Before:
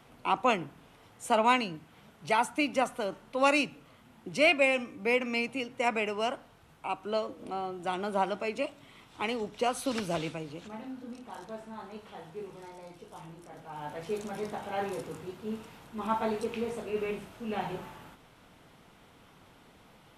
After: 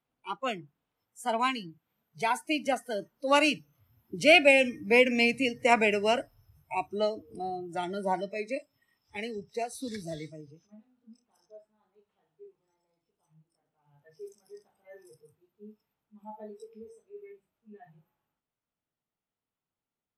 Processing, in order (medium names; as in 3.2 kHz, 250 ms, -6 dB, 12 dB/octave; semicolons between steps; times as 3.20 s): Doppler pass-by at 5.35 s, 12 m/s, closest 17 m; spectral noise reduction 23 dB; trim +6.5 dB